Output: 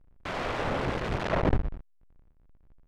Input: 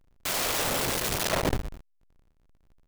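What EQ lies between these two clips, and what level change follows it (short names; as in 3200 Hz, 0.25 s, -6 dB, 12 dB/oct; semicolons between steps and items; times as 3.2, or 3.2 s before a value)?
LPF 2000 Hz 12 dB/oct; low shelf 200 Hz +5 dB; 0.0 dB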